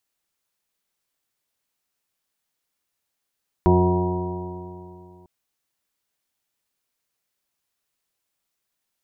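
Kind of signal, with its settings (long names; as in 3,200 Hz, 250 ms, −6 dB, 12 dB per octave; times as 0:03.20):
stiff-string partials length 1.60 s, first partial 89 Hz, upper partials −0.5/−14/2/−15.5/−17/−10/−9.5/−20/−4 dB, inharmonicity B 0.0015, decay 2.69 s, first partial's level −17.5 dB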